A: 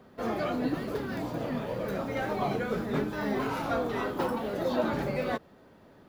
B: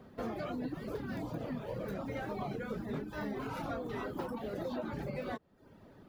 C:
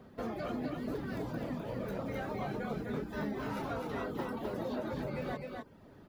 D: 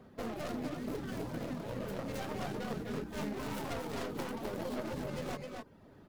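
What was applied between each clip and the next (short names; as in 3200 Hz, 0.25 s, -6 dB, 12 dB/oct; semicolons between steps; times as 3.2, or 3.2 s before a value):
low shelf 270 Hz +6.5 dB; reverb removal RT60 0.58 s; compressor, threshold -33 dBFS, peak gain reduction 11 dB; gain -2.5 dB
echo 0.256 s -4 dB
tracing distortion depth 0.48 ms; gain -1.5 dB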